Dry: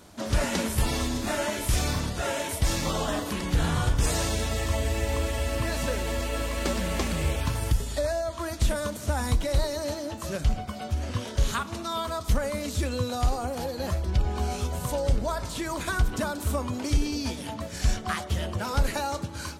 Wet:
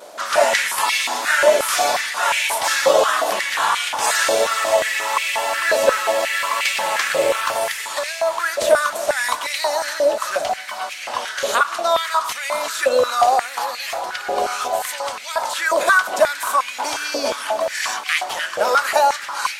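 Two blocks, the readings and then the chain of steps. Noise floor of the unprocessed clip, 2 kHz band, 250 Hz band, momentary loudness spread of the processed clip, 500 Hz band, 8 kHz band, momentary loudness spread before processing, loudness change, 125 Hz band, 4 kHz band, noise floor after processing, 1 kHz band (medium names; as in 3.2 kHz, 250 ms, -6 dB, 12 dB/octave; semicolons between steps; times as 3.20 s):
-38 dBFS, +15.5 dB, -7.5 dB, 8 LU, +12.0 dB, +9.5 dB, 5 LU, +9.5 dB, under -20 dB, +11.0 dB, -32 dBFS, +14.5 dB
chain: vibrato 0.96 Hz 26 cents; echo that smears into a reverb 610 ms, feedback 66%, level -13 dB; step-sequenced high-pass 5.6 Hz 560–2300 Hz; trim +9 dB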